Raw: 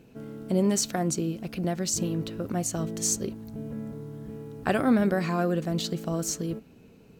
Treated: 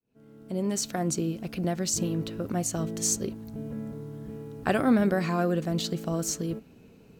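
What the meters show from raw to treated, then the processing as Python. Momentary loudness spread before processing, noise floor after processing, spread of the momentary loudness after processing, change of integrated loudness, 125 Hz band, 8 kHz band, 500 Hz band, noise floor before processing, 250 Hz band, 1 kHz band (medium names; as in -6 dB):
15 LU, -54 dBFS, 14 LU, -0.5 dB, -0.5 dB, -0.5 dB, -0.5 dB, -54 dBFS, -0.5 dB, -0.5 dB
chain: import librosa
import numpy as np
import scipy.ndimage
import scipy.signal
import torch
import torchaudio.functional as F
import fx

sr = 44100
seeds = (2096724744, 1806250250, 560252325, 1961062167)

y = fx.fade_in_head(x, sr, length_s=1.19)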